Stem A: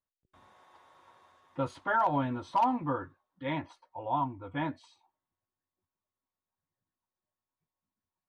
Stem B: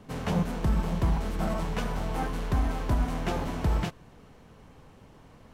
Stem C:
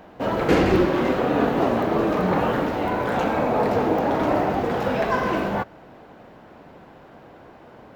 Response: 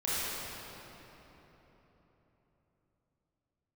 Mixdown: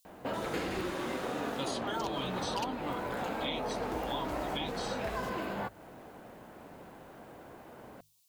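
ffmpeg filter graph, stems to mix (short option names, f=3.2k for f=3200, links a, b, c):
-filter_complex "[0:a]aexciter=amount=12.5:drive=6:freq=2.6k,volume=1dB[a];[1:a]acrusher=bits=6:mix=0:aa=0.5,adelay=1400,volume=-7.5dB,afade=t=in:st=3.38:d=0.22:silence=0.354813[b];[2:a]bandreject=f=5.8k:w=5.1,adelay=50,volume=-4.5dB[c];[a][b][c]amix=inputs=3:normalize=0,bandreject=f=50:t=h:w=6,bandreject=f=100:t=h:w=6,bandreject=f=150:t=h:w=6,acrossover=split=890|4200[d][e][f];[d]acompressor=threshold=-37dB:ratio=4[g];[e]acompressor=threshold=-41dB:ratio=4[h];[f]acompressor=threshold=-48dB:ratio=4[i];[g][h][i]amix=inputs=3:normalize=0"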